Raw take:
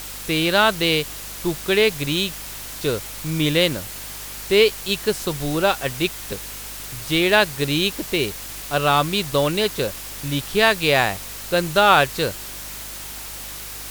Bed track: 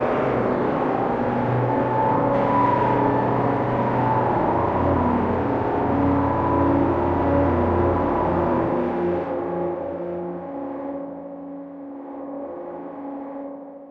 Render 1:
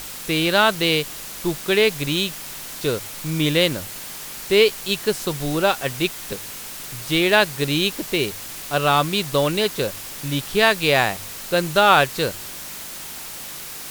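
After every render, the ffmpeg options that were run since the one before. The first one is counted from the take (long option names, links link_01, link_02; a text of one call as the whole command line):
ffmpeg -i in.wav -af "bandreject=frequency=50:width_type=h:width=4,bandreject=frequency=100:width_type=h:width=4" out.wav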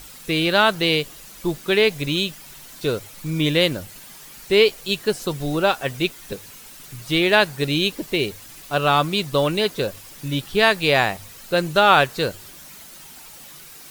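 ffmpeg -i in.wav -af "afftdn=noise_reduction=10:noise_floor=-35" out.wav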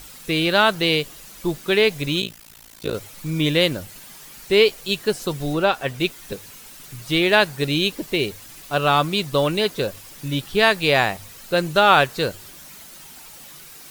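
ffmpeg -i in.wav -filter_complex "[0:a]asplit=3[link_01][link_02][link_03];[link_01]afade=type=out:start_time=2.2:duration=0.02[link_04];[link_02]tremolo=f=56:d=1,afade=type=in:start_time=2.2:duration=0.02,afade=type=out:start_time=2.93:duration=0.02[link_05];[link_03]afade=type=in:start_time=2.93:duration=0.02[link_06];[link_04][link_05][link_06]amix=inputs=3:normalize=0,asettb=1/sr,asplit=3[link_07][link_08][link_09];[link_07]atrim=end=5.534[link_10];[link_08]atrim=start=5.53:end=6,asetpts=PTS-STARTPTS,afade=type=in:duration=0.004:curve=qsin,afade=type=out:start_time=0.466:duration=0.004:curve=qsin,acrossover=split=4600[link_11][link_12];[link_12]acompressor=threshold=-42dB:ratio=4:attack=1:release=60[link_13];[link_11][link_13]amix=inputs=2:normalize=0[link_14];[link_09]atrim=start=5.996[link_15];[link_10][link_14]acrossfade=duration=0.004:curve1=hsin:curve2=qsin[link_16];[link_16][link_15]acrossfade=duration=0.004:curve1=qsin:curve2=hsin" out.wav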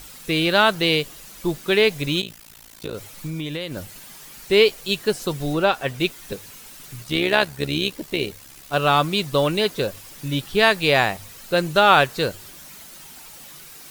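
ffmpeg -i in.wav -filter_complex "[0:a]asettb=1/sr,asplit=3[link_01][link_02][link_03];[link_01]atrim=end=2.214[link_04];[link_02]atrim=start=2.21:end=3.77,asetpts=PTS-STARTPTS,afade=type=in:duration=0.004:curve=qsin,afade=type=out:start_time=1.556:duration=0.004:curve=qsin,acompressor=threshold=-25dB:ratio=6:attack=3.2:release=140:knee=1:detection=peak[link_05];[link_03]atrim=start=3.766[link_06];[link_04][link_05]acrossfade=duration=0.004:curve1=hsin:curve2=qsin[link_07];[link_07][link_06]acrossfade=duration=0.004:curve1=qsin:curve2=hsin,asplit=3[link_08][link_09][link_10];[link_08]afade=type=out:start_time=7.02:duration=0.02[link_11];[link_09]tremolo=f=69:d=0.621,afade=type=in:start_time=7.02:duration=0.02,afade=type=out:start_time=8.72:duration=0.02[link_12];[link_10]afade=type=in:start_time=8.72:duration=0.02[link_13];[link_11][link_12][link_13]amix=inputs=3:normalize=0" out.wav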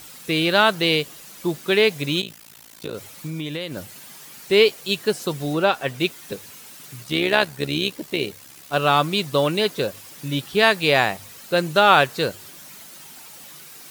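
ffmpeg -i in.wav -af "highpass=110" out.wav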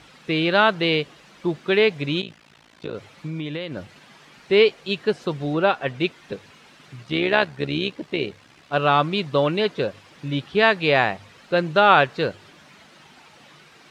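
ffmpeg -i in.wav -af "lowpass=3100" out.wav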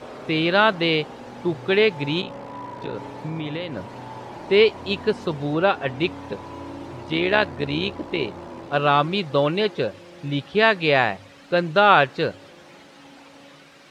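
ffmpeg -i in.wav -i bed.wav -filter_complex "[1:a]volume=-17dB[link_01];[0:a][link_01]amix=inputs=2:normalize=0" out.wav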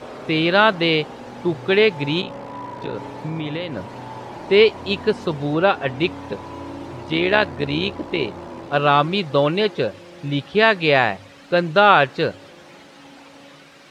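ffmpeg -i in.wav -af "volume=2.5dB,alimiter=limit=-2dB:level=0:latency=1" out.wav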